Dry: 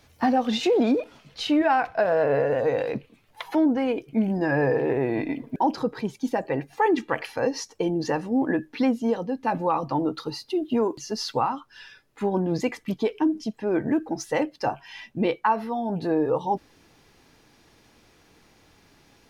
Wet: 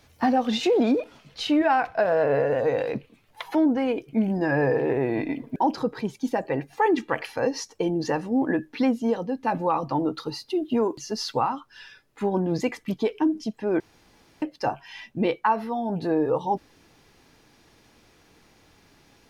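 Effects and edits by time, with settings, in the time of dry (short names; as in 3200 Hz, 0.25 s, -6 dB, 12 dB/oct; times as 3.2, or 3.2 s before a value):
13.8–14.42 room tone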